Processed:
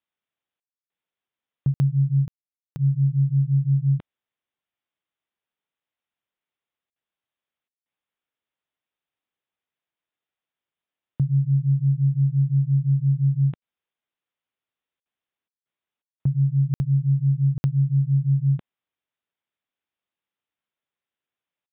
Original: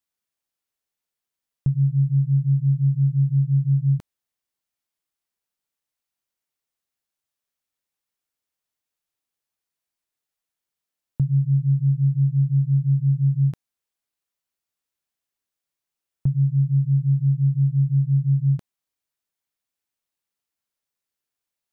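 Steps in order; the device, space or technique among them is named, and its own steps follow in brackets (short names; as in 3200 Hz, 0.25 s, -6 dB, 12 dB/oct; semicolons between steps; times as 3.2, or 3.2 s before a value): call with lost packets (HPF 100 Hz 6 dB/oct; downsampling 8000 Hz; packet loss packets of 60 ms bursts); gain +1 dB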